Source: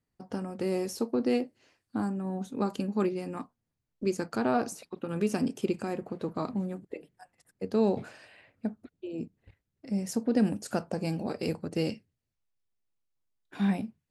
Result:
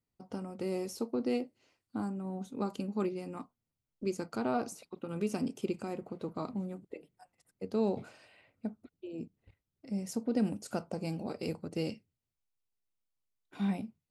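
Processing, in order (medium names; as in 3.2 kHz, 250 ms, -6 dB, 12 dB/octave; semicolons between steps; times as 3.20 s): band-stop 1.7 kHz, Q 6.3; trim -5 dB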